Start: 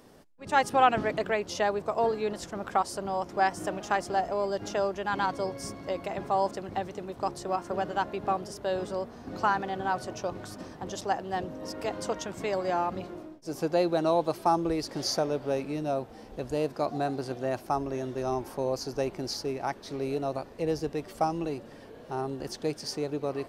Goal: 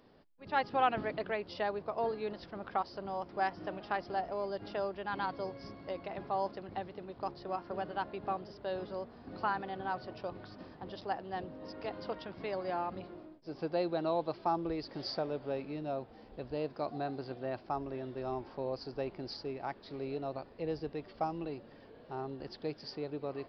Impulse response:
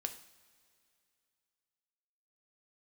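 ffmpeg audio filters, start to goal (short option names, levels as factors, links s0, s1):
-af "aresample=11025,aresample=44100,volume=0.422"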